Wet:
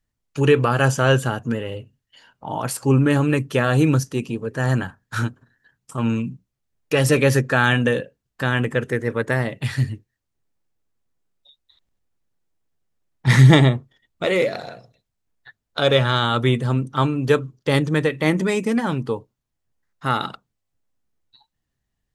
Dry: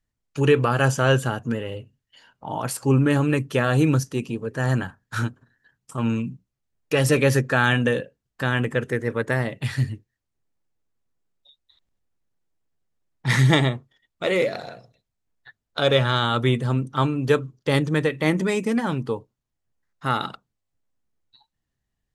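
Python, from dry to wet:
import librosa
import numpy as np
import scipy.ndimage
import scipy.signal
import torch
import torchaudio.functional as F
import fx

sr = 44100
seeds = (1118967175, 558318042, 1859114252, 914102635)

y = fx.low_shelf(x, sr, hz=500.0, db=5.5, at=(13.27, 14.25))
y = F.gain(torch.from_numpy(y), 2.0).numpy()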